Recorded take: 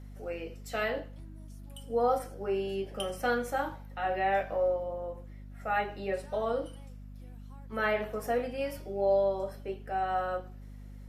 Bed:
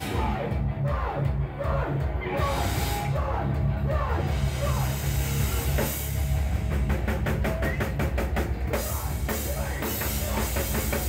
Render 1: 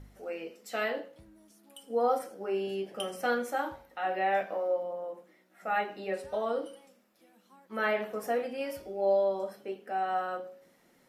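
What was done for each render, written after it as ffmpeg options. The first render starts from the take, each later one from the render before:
-af "bandreject=f=50:t=h:w=4,bandreject=f=100:t=h:w=4,bandreject=f=150:t=h:w=4,bandreject=f=200:t=h:w=4,bandreject=f=250:t=h:w=4,bandreject=f=300:t=h:w=4,bandreject=f=350:t=h:w=4,bandreject=f=400:t=h:w=4,bandreject=f=450:t=h:w=4,bandreject=f=500:t=h:w=4,bandreject=f=550:t=h:w=4"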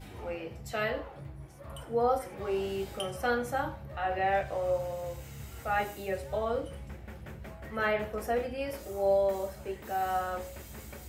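-filter_complex "[1:a]volume=0.119[s0];[0:a][s0]amix=inputs=2:normalize=0"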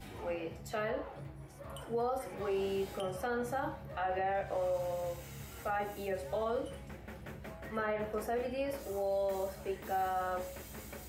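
-filter_complex "[0:a]acrossover=split=140|1600[s0][s1][s2];[s0]acompressor=threshold=0.00251:ratio=4[s3];[s1]acompressor=threshold=0.0355:ratio=4[s4];[s2]acompressor=threshold=0.00398:ratio=4[s5];[s3][s4][s5]amix=inputs=3:normalize=0,alimiter=level_in=1.33:limit=0.0631:level=0:latency=1:release=27,volume=0.75"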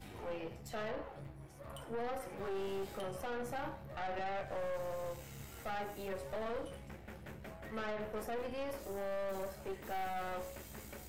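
-af "aeval=exprs='(tanh(63.1*val(0)+0.6)-tanh(0.6))/63.1':c=same"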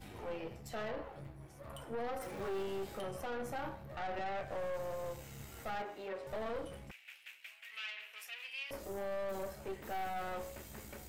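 -filter_complex "[0:a]asettb=1/sr,asplit=3[s0][s1][s2];[s0]atrim=end=2.214[s3];[s1]atrim=start=2.21:end=2.63,asetpts=PTS-STARTPTS,afade=t=in:d=0.004:c=qsin,afade=t=out:st=0.416:d=0.004:c=qsin,aeval=exprs='val(0)+0.5*0.00376*sgn(val(0))':c=same[s4];[s2]atrim=start=2.626[s5];[s3][s4]acrossfade=d=0.004:c1=hsin:c2=qsin[s6];[s6][s5]acrossfade=d=0.004:c1=qsin:c2=hsin,asettb=1/sr,asplit=3[s7][s8][s9];[s7]atrim=end=5.824[s10];[s8]atrim=start=5.82:end=6.27,asetpts=PTS-STARTPTS,afade=t=in:d=0.004:c=qsin,afade=t=out:st=0.446:d=0.004:c=qsin,acrossover=split=240 4900:gain=0.126 1 0.141[s11][s12][s13];[s11][s12][s13]amix=inputs=3:normalize=0[s14];[s9]atrim=start=6.266[s15];[s10][s14]acrossfade=d=0.004:c1=hsin:c2=qsin[s16];[s16][s15]acrossfade=d=0.004:c1=qsin:c2=hsin,asettb=1/sr,asplit=3[s17][s18][s19];[s17]atrim=end=6.914[s20];[s18]atrim=start=6.91:end=8.71,asetpts=PTS-STARTPTS,afade=t=in:d=0.004:c=qsin,afade=t=out:st=1.796:d=0.004:c=qsin,highpass=f=2600:t=q:w=4.2[s21];[s19]atrim=start=8.706[s22];[s20][s21]acrossfade=d=0.004:c1=hsin:c2=qsin[s23];[s23][s22]acrossfade=d=0.004:c1=qsin:c2=hsin"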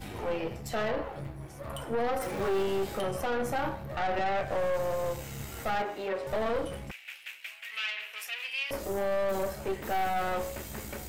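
-af "volume=3.16"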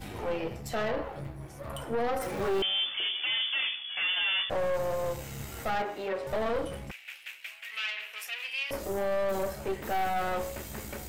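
-filter_complex "[0:a]asettb=1/sr,asplit=3[s0][s1][s2];[s0]atrim=end=2.624[s3];[s1]atrim=start=2.62:end=4.5,asetpts=PTS-STARTPTS,afade=t=in:d=0.004:c=qsin,afade=t=out:st=1.876:d=0.004:c=qsin,lowpass=f=3000:t=q:w=0.5098,lowpass=f=3000:t=q:w=0.6013,lowpass=f=3000:t=q:w=0.9,lowpass=f=3000:t=q:w=2.563,afreqshift=-3500[s4];[s2]atrim=start=4.496[s5];[s3][s4]acrossfade=d=0.004:c1=hsin:c2=qsin[s6];[s6][s5]acrossfade=d=0.004:c1=qsin:c2=hsin"

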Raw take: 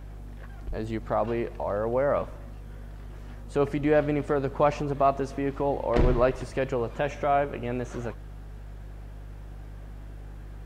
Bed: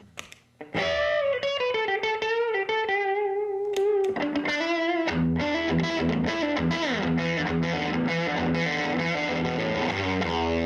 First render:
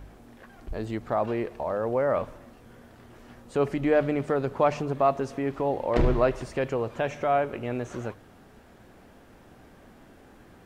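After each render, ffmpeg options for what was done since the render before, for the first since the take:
-af "bandreject=f=50:t=h:w=4,bandreject=f=100:t=h:w=4,bandreject=f=150:t=h:w=4"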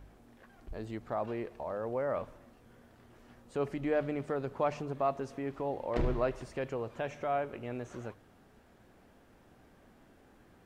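-af "volume=0.376"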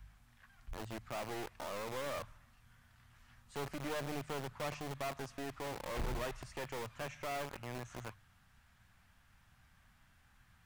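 -filter_complex "[0:a]aeval=exprs='(tanh(39.8*val(0)+0.25)-tanh(0.25))/39.8':c=same,acrossover=split=160|970[s0][s1][s2];[s1]acrusher=bits=4:dc=4:mix=0:aa=0.000001[s3];[s0][s3][s2]amix=inputs=3:normalize=0"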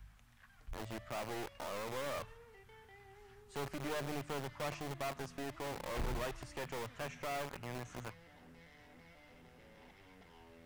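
-filter_complex "[1:a]volume=0.0188[s0];[0:a][s0]amix=inputs=2:normalize=0"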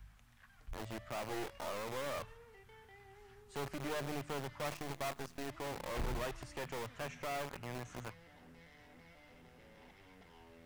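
-filter_complex "[0:a]asettb=1/sr,asplit=3[s0][s1][s2];[s0]atrim=end=1.274[s3];[s1]atrim=start=1.27:end=1.74,asetpts=PTS-STARTPTS,afade=t=in:d=0.004:c=qsin,afade=t=out:st=0.466:d=0.004:c=qsin,asplit=2[s4][s5];[s5]adelay=23,volume=0.531[s6];[s4][s6]amix=inputs=2:normalize=0,atrim=end_sample=20727[s7];[s2]atrim=start=1.736[s8];[s3][s7]acrossfade=d=0.004:c1=hsin:c2=qsin[s9];[s9][s8]acrossfade=d=0.004:c1=qsin:c2=hsin,asettb=1/sr,asplit=3[s10][s11][s12];[s10]atrim=end=4.654[s13];[s11]atrim=start=4.65:end=5.48,asetpts=PTS-STARTPTS,afade=t=in:d=0.004:c=qsin,afade=t=out:st=0.826:d=0.004:c=qsin,acrusher=bits=8:dc=4:mix=0:aa=0.000001[s14];[s12]atrim=start=5.476[s15];[s13][s14]acrossfade=d=0.004:c1=hsin:c2=qsin[s16];[s16][s15]acrossfade=d=0.004:c1=qsin:c2=hsin"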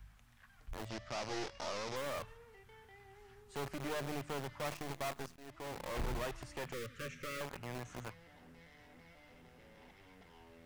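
-filter_complex "[0:a]asettb=1/sr,asplit=3[s0][s1][s2];[s0]atrim=end=0.894[s3];[s1]atrim=start=0.89:end=1.96,asetpts=PTS-STARTPTS,afade=t=in:d=0.004:c=qsin,afade=t=out:st=1.066:d=0.004:c=qsin,lowpass=f=5500:t=q:w=2.9[s4];[s2]atrim=start=1.956[s5];[s3][s4]acrossfade=d=0.004:c1=hsin:c2=qsin[s6];[s6][s5]acrossfade=d=0.004:c1=qsin:c2=hsin,asettb=1/sr,asplit=3[s7][s8][s9];[s7]atrim=end=6.734[s10];[s8]atrim=start=6.73:end=7.41,asetpts=PTS-STARTPTS,afade=t=in:d=0.004:c=qsin,afade=t=out:st=0.676:d=0.004:c=qsin,asuperstop=centerf=810:order=20:qfactor=1.5[s11];[s9]atrim=start=7.406[s12];[s10][s11]acrossfade=d=0.004:c1=hsin:c2=qsin[s13];[s13][s12]acrossfade=d=0.004:c1=qsin:c2=hsin,asplit=2[s14][s15];[s14]atrim=end=5.36,asetpts=PTS-STARTPTS,afade=t=out:st=5.356:d=0.004:c=hsin:silence=0.11885[s16];[s15]atrim=start=5.36,asetpts=PTS-STARTPTS,afade=t=in:d=0.63:c=qsin:silence=0.11885[s17];[s16][s17]concat=n=2:v=0:a=1"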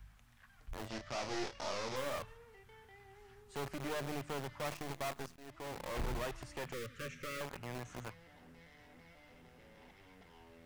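-filter_complex "[0:a]asettb=1/sr,asplit=3[s0][s1][s2];[s0]atrim=end=0.814[s3];[s1]atrim=start=0.81:end=2.18,asetpts=PTS-STARTPTS,afade=t=in:d=0.004:c=qsin,afade=t=out:st=1.366:d=0.004:c=qsin,asplit=2[s4][s5];[s5]adelay=31,volume=0.473[s6];[s4][s6]amix=inputs=2:normalize=0,atrim=end_sample=60417[s7];[s2]atrim=start=2.176[s8];[s3][s7]acrossfade=d=0.004:c1=hsin:c2=qsin[s9];[s9][s8]acrossfade=d=0.004:c1=qsin:c2=hsin"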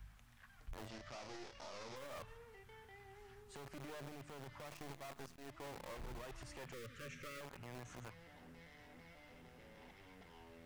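-af "acompressor=threshold=0.00794:ratio=6,alimiter=level_in=6.68:limit=0.0631:level=0:latency=1:release=38,volume=0.15"

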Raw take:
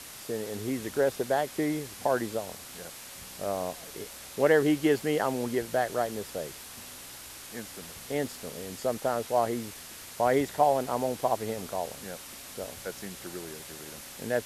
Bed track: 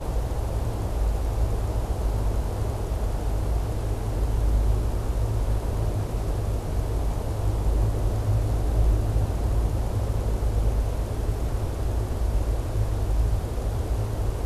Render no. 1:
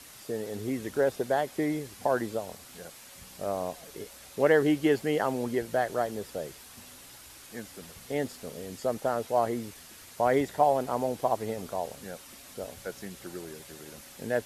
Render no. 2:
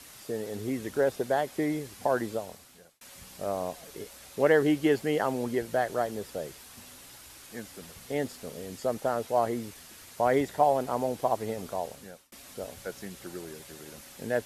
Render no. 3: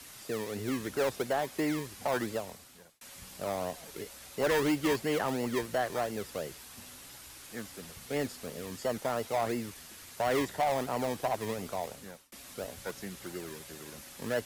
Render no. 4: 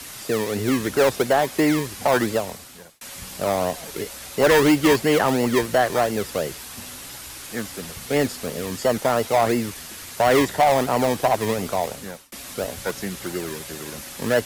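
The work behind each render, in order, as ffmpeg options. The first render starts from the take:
-af "afftdn=nr=6:nf=-45"
-filter_complex "[0:a]asplit=3[s0][s1][s2];[s0]atrim=end=3.01,asetpts=PTS-STARTPTS,afade=t=out:st=2.35:d=0.66[s3];[s1]atrim=start=3.01:end=12.32,asetpts=PTS-STARTPTS,afade=t=in:d=0.004:c=hsin,afade=t=out:st=8.69:d=0.62:c=qsin[s4];[s2]atrim=start=12.32,asetpts=PTS-STARTPTS,afade=t=in:d=0.004:c=hsin[s5];[s3][s4][s5]concat=n=3:v=0:a=1"
-filter_complex "[0:a]acrossover=split=170|510|5400[s0][s1][s2][s3];[s1]acrusher=samples=25:mix=1:aa=0.000001:lfo=1:lforange=15:lforate=2.9[s4];[s0][s4][s2][s3]amix=inputs=4:normalize=0,asoftclip=type=tanh:threshold=0.0708"
-af "volume=3.98"

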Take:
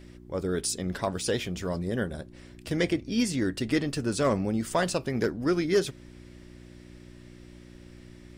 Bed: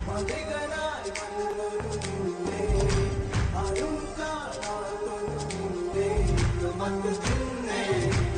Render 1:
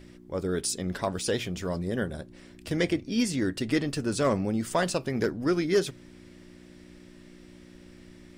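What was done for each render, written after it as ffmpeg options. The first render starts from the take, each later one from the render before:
-af "bandreject=f=60:t=h:w=4,bandreject=f=120:t=h:w=4"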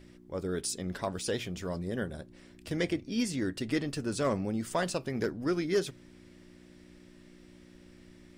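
-af "volume=0.596"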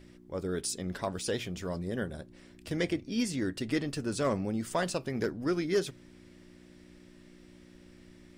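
-af anull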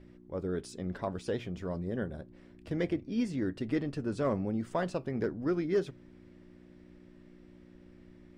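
-af "lowpass=f=1200:p=1"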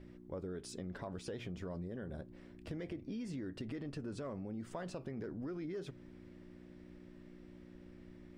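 -af "alimiter=level_in=1.88:limit=0.0631:level=0:latency=1:release=50,volume=0.531,acompressor=threshold=0.01:ratio=4"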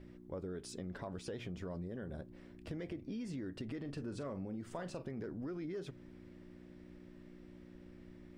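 -filter_complex "[0:a]asettb=1/sr,asplit=3[s0][s1][s2];[s0]atrim=end=3.804[s3];[s1]atrim=start=3.8:end=5.11,asetpts=PTS-STARTPTS,afade=t=in:d=0.004:c=qsin,afade=t=out:st=1.306:d=0.004:c=qsin,asplit=2[s4][s5];[s5]adelay=42,volume=0.251[s6];[s4][s6]amix=inputs=2:normalize=0,atrim=end_sample=57771[s7];[s2]atrim=start=5.106[s8];[s3][s7]acrossfade=d=0.004:c1=hsin:c2=qsin[s9];[s9][s8]acrossfade=d=0.004:c1=qsin:c2=hsin"

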